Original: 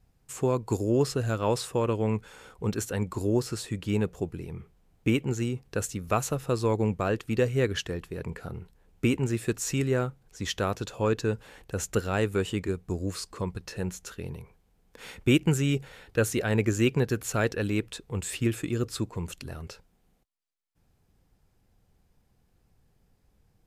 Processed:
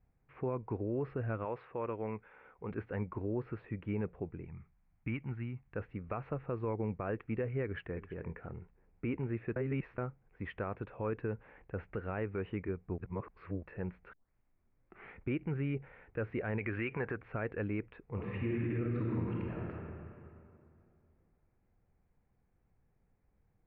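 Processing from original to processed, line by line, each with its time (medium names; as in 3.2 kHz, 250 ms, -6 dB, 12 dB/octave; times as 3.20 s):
1.45–2.71 s: bass shelf 270 Hz -10 dB
4.45–5.75 s: peaking EQ 440 Hz -15 dB 1.1 oct
7.63–8.18 s: echo throw 330 ms, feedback 15%, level -15.5 dB
9.56–9.98 s: reverse
12.98–13.63 s: reverse
14.13 s: tape start 1.05 s
16.57–17.15 s: peaking EQ 4.2 kHz -> 1.1 kHz +14 dB 3 oct
18.04–19.70 s: reverb throw, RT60 2.6 s, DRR -4 dB
whole clip: elliptic low-pass 2.3 kHz, stop band 70 dB; peak limiter -20.5 dBFS; trim -6.5 dB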